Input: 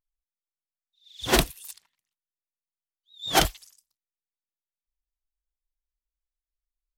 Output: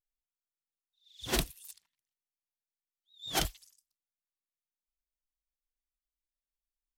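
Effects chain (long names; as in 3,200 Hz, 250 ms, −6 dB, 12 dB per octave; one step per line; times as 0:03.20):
parametric band 850 Hz −5.5 dB 3 octaves
level −7.5 dB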